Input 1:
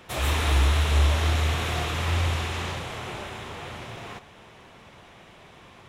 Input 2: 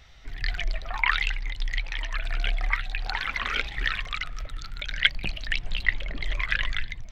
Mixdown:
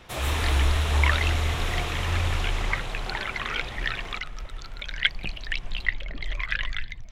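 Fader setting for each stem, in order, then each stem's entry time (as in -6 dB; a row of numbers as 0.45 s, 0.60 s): -2.0 dB, -2.0 dB; 0.00 s, 0.00 s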